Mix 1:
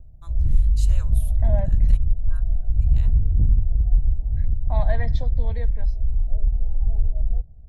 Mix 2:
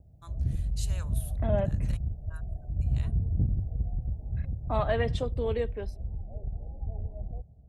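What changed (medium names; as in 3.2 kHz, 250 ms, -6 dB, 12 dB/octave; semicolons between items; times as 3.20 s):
second voice: remove static phaser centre 1.9 kHz, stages 8; master: add high-pass 98 Hz 12 dB/octave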